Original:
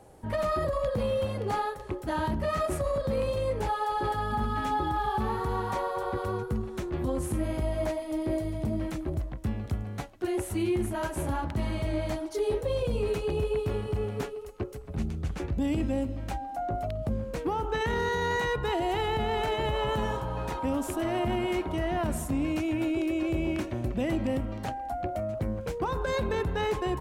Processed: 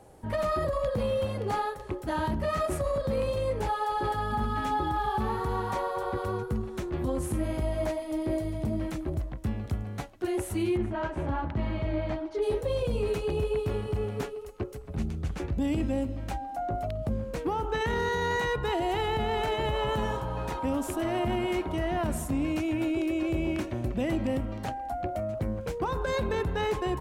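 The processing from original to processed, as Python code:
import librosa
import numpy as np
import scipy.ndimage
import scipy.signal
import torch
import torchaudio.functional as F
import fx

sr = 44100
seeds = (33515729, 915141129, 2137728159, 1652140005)

y = fx.lowpass(x, sr, hz=2900.0, slope=12, at=(10.76, 12.41), fade=0.02)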